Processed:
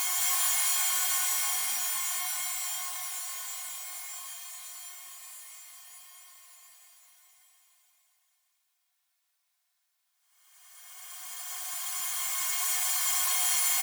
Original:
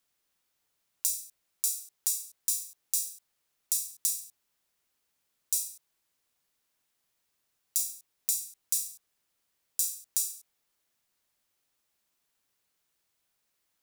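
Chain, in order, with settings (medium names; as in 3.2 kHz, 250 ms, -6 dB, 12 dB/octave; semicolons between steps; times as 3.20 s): comb filter that takes the minimum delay 2.8 ms; steep high-pass 670 Hz 72 dB/octave; Paulstretch 26×, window 0.25 s, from 7.78 s; on a send: loudspeakers at several distances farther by 36 m -11 dB, 73 m -1 dB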